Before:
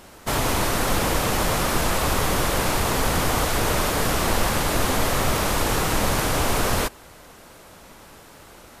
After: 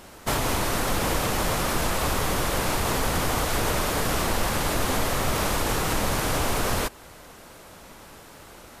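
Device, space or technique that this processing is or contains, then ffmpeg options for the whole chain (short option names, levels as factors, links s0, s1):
clipper into limiter: -af "asoftclip=type=hard:threshold=0.282,alimiter=limit=0.188:level=0:latency=1:release=230"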